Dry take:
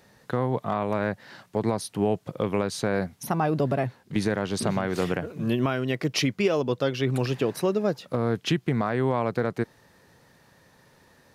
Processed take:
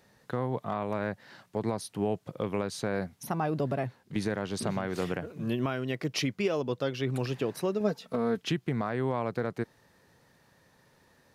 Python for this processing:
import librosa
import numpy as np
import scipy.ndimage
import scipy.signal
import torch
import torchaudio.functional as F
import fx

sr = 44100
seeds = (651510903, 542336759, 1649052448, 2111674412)

y = fx.comb(x, sr, ms=4.5, depth=0.7, at=(7.8, 8.42))
y = y * librosa.db_to_amplitude(-5.5)